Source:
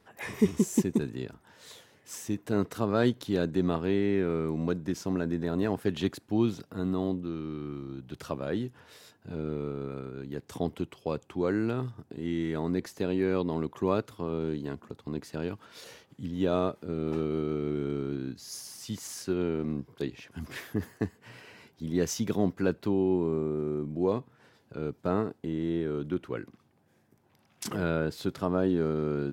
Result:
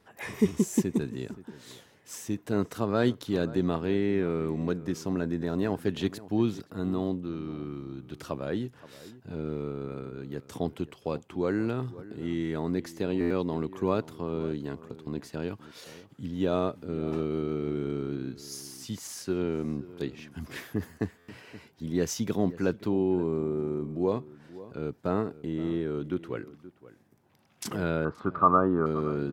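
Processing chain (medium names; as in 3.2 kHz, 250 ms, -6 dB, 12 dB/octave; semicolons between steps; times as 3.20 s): 28.05–28.86 s: resonant low-pass 1.2 kHz, resonance Q 13; echo from a far wall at 90 m, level -17 dB; buffer glitch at 13.20/21.18 s, samples 512, times 8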